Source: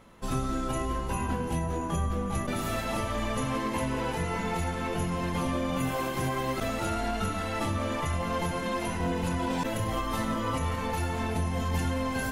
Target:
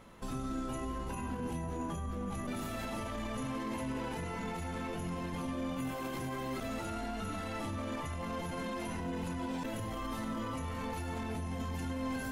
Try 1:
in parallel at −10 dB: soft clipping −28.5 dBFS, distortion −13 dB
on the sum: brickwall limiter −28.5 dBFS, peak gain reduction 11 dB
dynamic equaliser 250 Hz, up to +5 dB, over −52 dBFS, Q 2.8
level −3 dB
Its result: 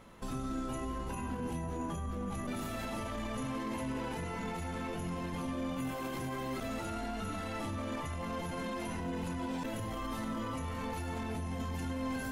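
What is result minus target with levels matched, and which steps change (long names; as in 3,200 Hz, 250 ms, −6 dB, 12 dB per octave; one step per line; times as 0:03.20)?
soft clipping: distortion −7 dB
change: soft clipping −40.5 dBFS, distortion −5 dB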